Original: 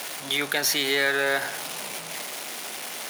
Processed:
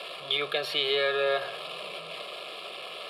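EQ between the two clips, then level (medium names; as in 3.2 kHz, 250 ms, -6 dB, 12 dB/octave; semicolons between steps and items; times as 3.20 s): band-pass 160–3800 Hz; Butterworth band-stop 1.5 kHz, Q 5; static phaser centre 1.3 kHz, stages 8; +2.0 dB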